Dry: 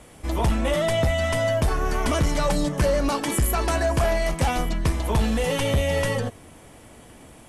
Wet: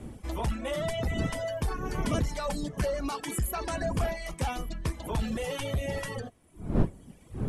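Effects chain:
wind on the microphone 210 Hz −27 dBFS
reverb reduction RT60 1.2 s
level −7.5 dB

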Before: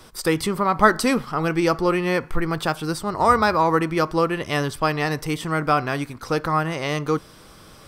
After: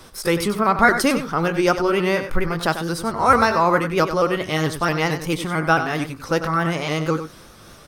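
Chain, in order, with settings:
pitch shifter swept by a sawtooth +2 semitones, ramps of 222 ms
single-tap delay 95 ms −10 dB
level +2.5 dB

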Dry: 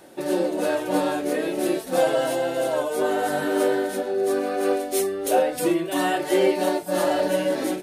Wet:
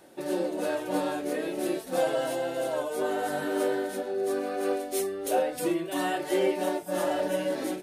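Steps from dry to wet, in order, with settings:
0:06.39–0:07.41: notch filter 4,300 Hz, Q 6.9
level −6 dB

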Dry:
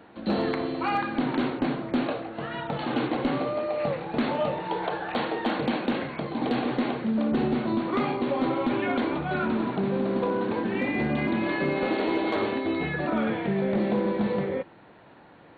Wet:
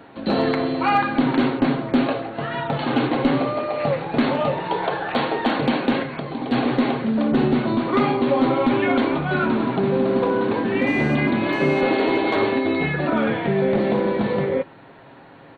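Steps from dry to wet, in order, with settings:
comb filter 7.4 ms, depth 38%
0:06.02–0:06.52: downward compressor 6 to 1, threshold −31 dBFS, peak gain reduction 8 dB
0:10.87–0:11.81: phone interference −44 dBFS
level +6 dB

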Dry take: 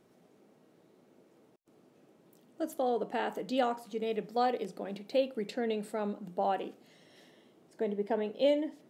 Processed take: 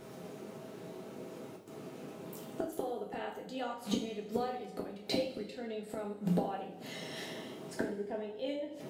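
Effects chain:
gate with flip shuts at −33 dBFS, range −24 dB
coupled-rooms reverb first 0.4 s, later 1.5 s, from −15 dB, DRR −2 dB
hum with harmonics 100 Hz, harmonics 5, −80 dBFS 0 dB per octave
level +13 dB

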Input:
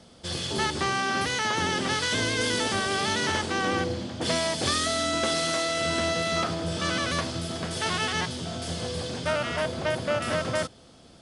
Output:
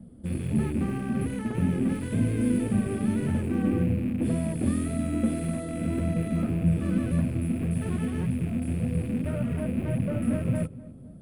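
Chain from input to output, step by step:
loose part that buzzes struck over −38 dBFS, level −17 dBFS
drawn EQ curve 100 Hz 0 dB, 230 Hz +10 dB, 340 Hz 0 dB, 550 Hz −4 dB, 910 Hz −13 dB, 1,800 Hz −13 dB, 5,900 Hz −29 dB, 10,000 Hz +1 dB
flanger 1.8 Hz, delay 1 ms, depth 3.1 ms, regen −34%
low-shelf EQ 250 Hz +10.5 dB
feedback echo with a low-pass in the loop 252 ms, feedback 52%, low-pass 1,300 Hz, level −19 dB

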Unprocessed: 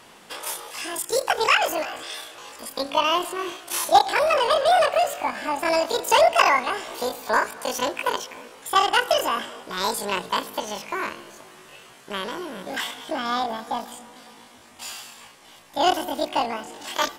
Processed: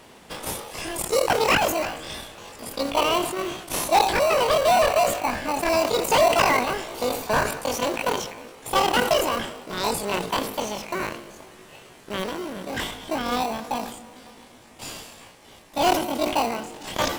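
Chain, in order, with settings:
in parallel at −3.5 dB: sample-rate reduction 1,700 Hz, jitter 0%
on the sum: gain into a clipping stage and back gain 11 dB
level that may fall only so fast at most 75 dB per second
level −2 dB

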